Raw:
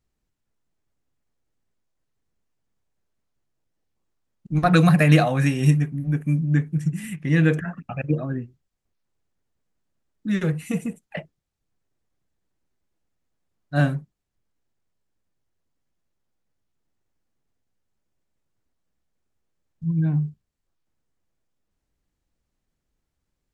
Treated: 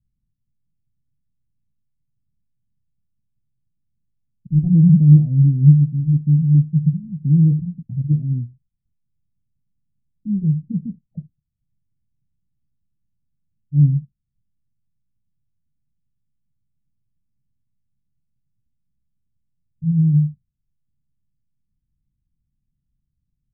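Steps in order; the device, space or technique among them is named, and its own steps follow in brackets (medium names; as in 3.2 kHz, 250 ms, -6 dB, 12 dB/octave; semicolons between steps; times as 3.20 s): the neighbour's flat through the wall (low-pass 210 Hz 24 dB/octave; peaking EQ 130 Hz +6 dB 0.51 oct); trim +4 dB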